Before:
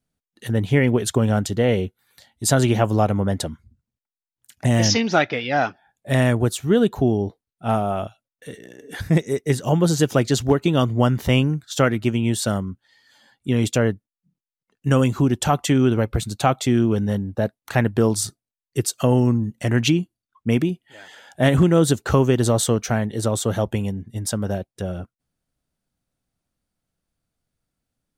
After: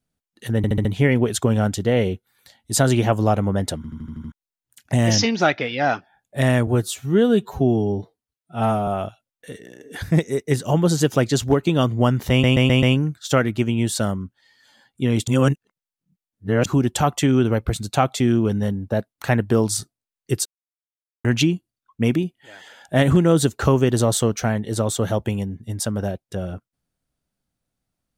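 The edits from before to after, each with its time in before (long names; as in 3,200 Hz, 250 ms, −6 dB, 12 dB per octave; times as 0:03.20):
0:00.57: stutter 0.07 s, 5 plays
0:03.48: stutter in place 0.08 s, 7 plays
0:06.39–0:07.86: time-stretch 1.5×
0:11.29: stutter 0.13 s, 5 plays
0:13.74–0:15.12: reverse
0:18.92–0:19.71: silence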